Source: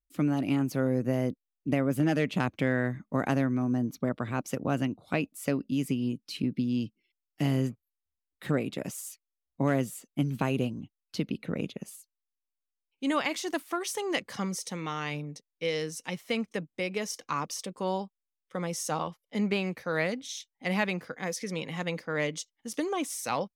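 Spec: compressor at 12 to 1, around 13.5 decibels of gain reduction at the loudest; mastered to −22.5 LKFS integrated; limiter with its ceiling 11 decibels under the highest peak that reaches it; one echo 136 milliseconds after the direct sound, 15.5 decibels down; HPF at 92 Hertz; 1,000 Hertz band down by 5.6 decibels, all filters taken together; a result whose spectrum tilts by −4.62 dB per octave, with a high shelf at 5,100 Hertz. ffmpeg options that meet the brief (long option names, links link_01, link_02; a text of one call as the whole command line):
ffmpeg -i in.wav -af "highpass=92,equalizer=frequency=1000:width_type=o:gain=-7.5,highshelf=frequency=5100:gain=-5.5,acompressor=threshold=-37dB:ratio=12,alimiter=level_in=9dB:limit=-24dB:level=0:latency=1,volume=-9dB,aecho=1:1:136:0.168,volume=21.5dB" out.wav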